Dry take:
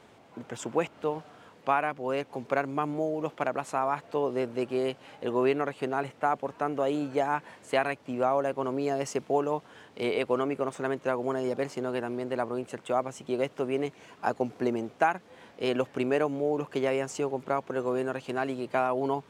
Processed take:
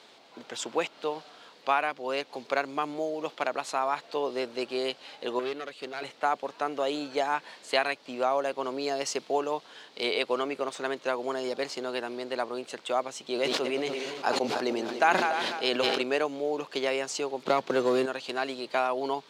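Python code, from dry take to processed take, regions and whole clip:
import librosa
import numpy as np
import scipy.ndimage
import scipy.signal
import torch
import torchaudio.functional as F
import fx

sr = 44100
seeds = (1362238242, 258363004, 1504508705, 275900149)

y = fx.chain(x, sr, fx.tube_stage(drive_db=24.0, bias=0.75),
    fx.peak_eq(hz=870.0, db=-8.5, octaves=0.44), at=(5.39, 6.02))
y = fx.chain(y, sr, fx.reverse_delay_fb(ms=147, feedback_pct=66, wet_db=-12),
    fx.sustainer(db_per_s=28.0), at=(13.26, 16.02))
y = fx.chain(y, sr, fx.low_shelf(hz=250.0, db=11.0),
    fx.leveller(passes=1),
    fx.band_squash(depth_pct=70), at=(17.45, 18.06))
y = scipy.signal.sosfilt(scipy.signal.bessel(2, 360.0, 'highpass', norm='mag', fs=sr, output='sos'), y)
y = fx.peak_eq(y, sr, hz=4200.0, db=14.0, octaves=0.99)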